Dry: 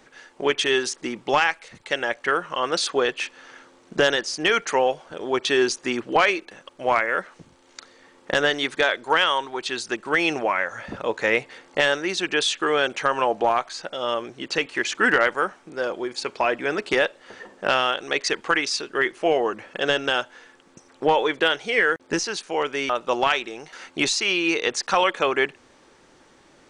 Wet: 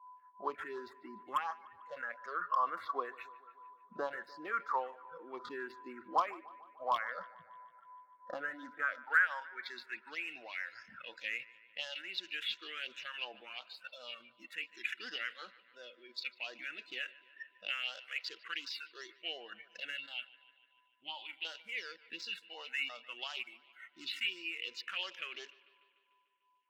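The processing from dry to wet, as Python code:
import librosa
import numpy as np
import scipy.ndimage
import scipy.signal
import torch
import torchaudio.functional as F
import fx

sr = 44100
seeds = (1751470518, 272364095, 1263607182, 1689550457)

p1 = scipy.signal.medfilt(x, 15)
p2 = fx.noise_reduce_blind(p1, sr, reduce_db=26)
p3 = fx.dynamic_eq(p2, sr, hz=270.0, q=2.0, threshold_db=-42.0, ratio=4.0, max_db=5)
p4 = fx.over_compress(p3, sr, threshold_db=-36.0, ratio=-1.0)
p5 = p3 + F.gain(torch.from_numpy(p4), 0.0).numpy()
p6 = p5 + 10.0 ** (-45.0 / 20.0) * np.sin(2.0 * np.pi * 1000.0 * np.arange(len(p5)) / sr)
p7 = fx.fixed_phaser(p6, sr, hz=1700.0, stages=6, at=(19.98, 21.45))
p8 = fx.filter_sweep_bandpass(p7, sr, from_hz=1100.0, to_hz=2900.0, start_s=8.66, end_s=10.29, q=6.8)
p9 = np.clip(p8, -10.0 ** (-19.5 / 20.0), 10.0 ** (-19.5 / 20.0))
p10 = fx.phaser_stages(p9, sr, stages=4, low_hz=710.0, high_hz=2400.0, hz=2.8, feedback_pct=20)
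p11 = p10 + fx.echo_bbd(p10, sr, ms=148, stages=4096, feedback_pct=64, wet_db=-20.5, dry=0)
y = F.gain(torch.from_numpy(p11), 2.0).numpy()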